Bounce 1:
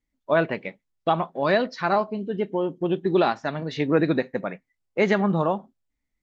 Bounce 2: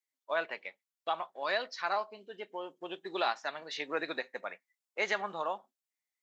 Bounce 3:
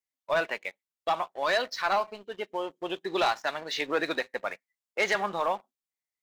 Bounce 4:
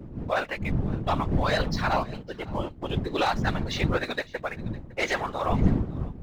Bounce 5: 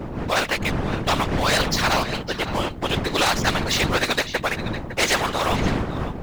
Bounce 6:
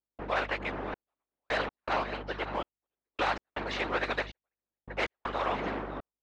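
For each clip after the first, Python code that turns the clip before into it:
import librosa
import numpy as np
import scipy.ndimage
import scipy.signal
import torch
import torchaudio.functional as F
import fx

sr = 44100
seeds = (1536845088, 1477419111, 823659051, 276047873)

y1 = scipy.signal.sosfilt(scipy.signal.butter(2, 720.0, 'highpass', fs=sr, output='sos'), x)
y1 = fx.high_shelf(y1, sr, hz=3800.0, db=8.5)
y1 = fx.rider(y1, sr, range_db=3, speed_s=2.0)
y1 = F.gain(torch.from_numpy(y1), -8.0).numpy()
y2 = fx.low_shelf(y1, sr, hz=180.0, db=4.0)
y2 = fx.leveller(y2, sr, passes=2)
y3 = fx.dmg_wind(y2, sr, seeds[0], corner_hz=150.0, level_db=-29.0)
y3 = fx.whisperise(y3, sr, seeds[1])
y3 = y3 + 10.0 ** (-21.5 / 20.0) * np.pad(y3, (int(558 * sr / 1000.0), 0))[:len(y3)]
y4 = fx.spectral_comp(y3, sr, ratio=2.0)
y4 = F.gain(torch.from_numpy(y4), 2.5).numpy()
y5 = fx.bandpass_edges(y4, sr, low_hz=340.0, high_hz=2300.0)
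y5 = fx.add_hum(y5, sr, base_hz=50, snr_db=12)
y5 = fx.step_gate(y5, sr, bpm=80, pattern='.xxxx...x', floor_db=-60.0, edge_ms=4.5)
y5 = F.gain(torch.from_numpy(y5), -7.0).numpy()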